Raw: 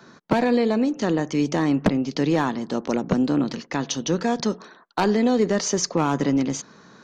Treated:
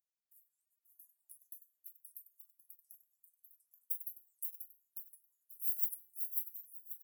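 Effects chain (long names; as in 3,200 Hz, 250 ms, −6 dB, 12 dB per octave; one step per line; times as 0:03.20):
stylus tracing distortion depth 0.15 ms
inverse Chebyshev band-stop filter 130–4,900 Hz, stop band 60 dB
spectral tilt +4.5 dB per octave
tuned comb filter 170 Hz, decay 0.38 s, harmonics all, mix 90%
repeating echo 537 ms, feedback 34%, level −4 dB
auto-filter high-pass saw down 0.7 Hz 580–5,000 Hz
notch comb filter 390 Hz
single-tap delay 97 ms −8 dB
reverb reduction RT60 1.5 s
wow of a warped record 78 rpm, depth 250 cents
level −5 dB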